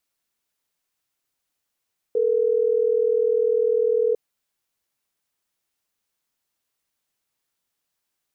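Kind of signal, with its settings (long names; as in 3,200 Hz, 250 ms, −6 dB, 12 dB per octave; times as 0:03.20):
call progress tone ringback tone, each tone −20 dBFS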